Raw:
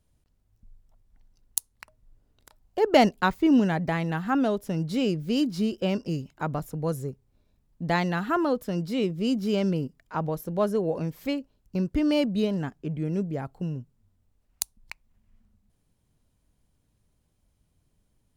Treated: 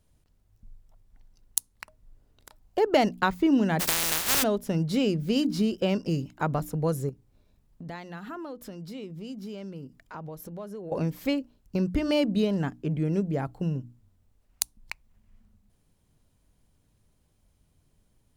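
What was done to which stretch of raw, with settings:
0:03.79–0:04.42: compressing power law on the bin magnitudes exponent 0.11
0:07.09–0:10.92: downward compressor 4 to 1, threshold −42 dBFS
whole clip: mains-hum notches 60/120/180/240/300 Hz; downward compressor 2 to 1, threshold −26 dBFS; level +3.5 dB

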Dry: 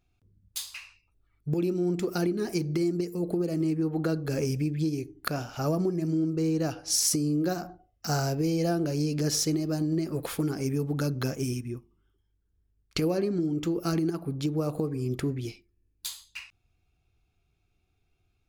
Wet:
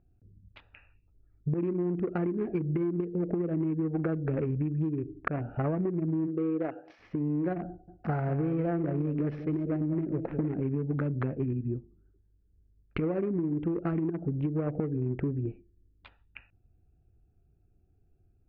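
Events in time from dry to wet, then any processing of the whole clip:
0:06.26–0:06.98: high-pass filter 230 Hz → 550 Hz
0:07.68–0:10.60: single-tap delay 197 ms −9.5 dB
whole clip: adaptive Wiener filter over 41 samples; downward compressor 6 to 1, threshold −34 dBFS; Butterworth low-pass 2,400 Hz 36 dB per octave; level +7 dB

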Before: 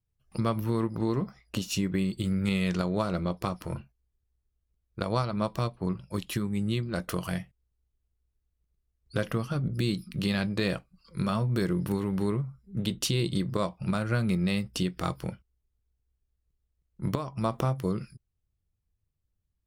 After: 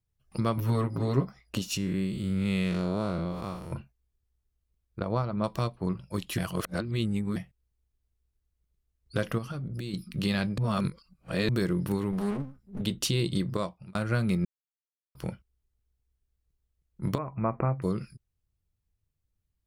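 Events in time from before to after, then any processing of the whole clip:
0:00.57–0:01.25: comb filter 7.3 ms, depth 94%
0:01.77–0:03.72: spectrum smeared in time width 157 ms
0:04.99–0:05.44: low-pass filter 1,200 Hz 6 dB per octave
0:06.38–0:07.36: reverse
0:09.38–0:09.94: downward compressor, threshold −32 dBFS
0:10.58–0:11.49: reverse
0:12.12–0:12.81: lower of the sound and its delayed copy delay 4.8 ms
0:13.50–0:13.95: fade out
0:14.45–0:15.15: silence
0:17.18–0:17.82: Butterworth low-pass 2,500 Hz 96 dB per octave

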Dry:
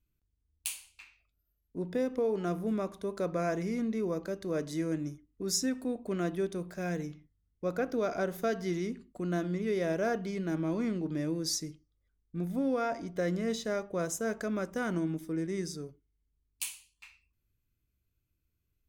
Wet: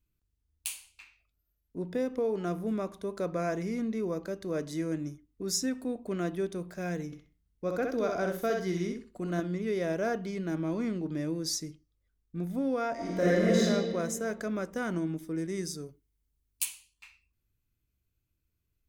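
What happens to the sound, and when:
0:07.06–0:09.40: repeating echo 64 ms, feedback 21%, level −4 dB
0:12.94–0:13.61: thrown reverb, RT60 1.9 s, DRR −8 dB
0:15.35–0:16.65: high-shelf EQ 6,500 Hz +8 dB

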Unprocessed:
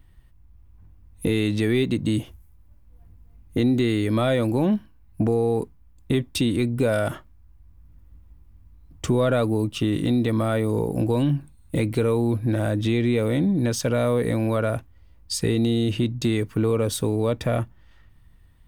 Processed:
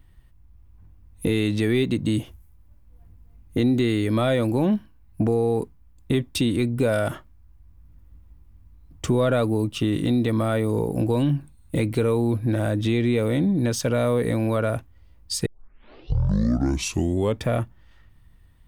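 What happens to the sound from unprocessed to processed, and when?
0:15.46: tape start 2.00 s

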